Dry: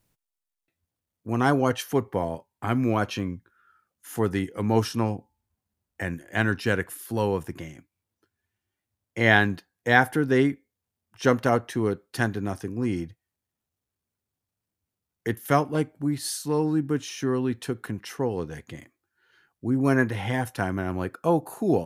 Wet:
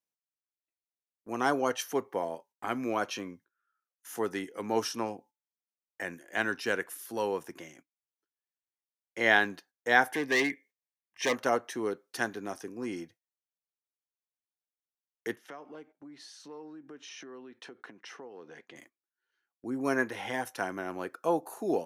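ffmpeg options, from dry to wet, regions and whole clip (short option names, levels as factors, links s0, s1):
-filter_complex "[0:a]asettb=1/sr,asplit=3[s0][s1][s2];[s0]atrim=end=10.144[s3];[s1]atrim=start=10.14:end=11.36,asetpts=PTS-STARTPTS,afade=t=in:d=0.004:c=qsin,afade=t=out:st=1.216:d=0.004:c=qsin,equalizer=f=2000:w=1.5:g=13,asoftclip=type=hard:threshold=0.141,asuperstop=centerf=1400:order=8:qfactor=4.1[s4];[s2]atrim=start=11.356[s5];[s3][s4]acrossfade=d=0.004:c1=hsin:c2=qsin[s6];[s6][s5]acrossfade=d=0.004:c1=qsin:c2=hsin,asettb=1/sr,asplit=3[s7][s8][s9];[s7]atrim=end=15.364[s10];[s8]atrim=start=15.36:end=18.76,asetpts=PTS-STARTPTS,afade=t=in:d=0.004:c=qsin,afade=t=out:st=3.396:d=0.004:c=qsin,acompressor=threshold=0.0178:ratio=8:attack=3.2:release=140:knee=1:detection=peak,highpass=160,lowpass=3800[s11];[s9]atrim=start=18.756[s12];[s10][s11]acrossfade=d=0.004:c1=hsin:c2=qsin[s13];[s13][s12]acrossfade=d=0.004:c1=qsin:c2=hsin,highpass=340,equalizer=f=5900:t=o:w=0.22:g=6.5,agate=range=0.158:threshold=0.00251:ratio=16:detection=peak,volume=0.631"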